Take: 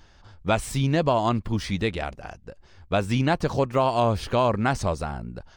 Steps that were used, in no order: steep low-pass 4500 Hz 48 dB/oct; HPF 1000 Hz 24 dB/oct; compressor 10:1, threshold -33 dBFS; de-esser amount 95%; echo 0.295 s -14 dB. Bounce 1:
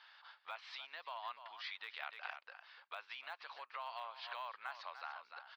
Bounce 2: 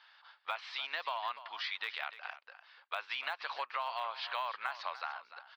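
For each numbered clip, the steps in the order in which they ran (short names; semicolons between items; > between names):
steep low-pass > de-esser > echo > compressor > HPF; steep low-pass > de-esser > HPF > compressor > echo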